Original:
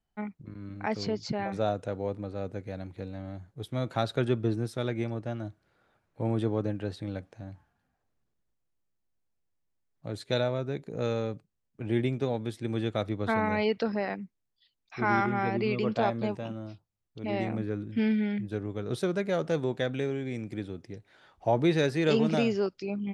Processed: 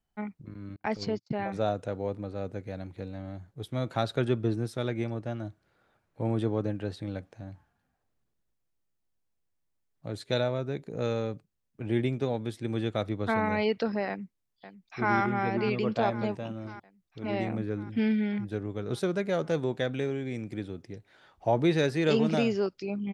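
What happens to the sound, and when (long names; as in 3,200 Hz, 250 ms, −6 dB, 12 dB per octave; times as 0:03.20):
0:00.76–0:01.55: noise gate −36 dBFS, range −43 dB
0:14.08–0:15.14: delay throw 550 ms, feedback 70%, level −13 dB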